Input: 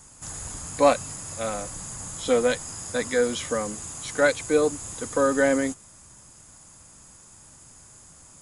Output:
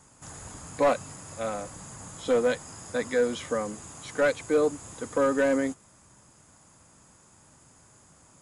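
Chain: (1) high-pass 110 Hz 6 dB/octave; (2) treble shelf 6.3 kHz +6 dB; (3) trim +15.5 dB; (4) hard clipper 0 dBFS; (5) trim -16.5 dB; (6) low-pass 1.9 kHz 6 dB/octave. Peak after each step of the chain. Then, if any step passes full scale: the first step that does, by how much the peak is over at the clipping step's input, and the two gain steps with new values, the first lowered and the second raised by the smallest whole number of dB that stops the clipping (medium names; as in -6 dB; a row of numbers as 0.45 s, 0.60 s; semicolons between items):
-5.5 dBFS, -5.5 dBFS, +10.0 dBFS, 0.0 dBFS, -16.5 dBFS, -16.5 dBFS; step 3, 10.0 dB; step 3 +5.5 dB, step 5 -6.5 dB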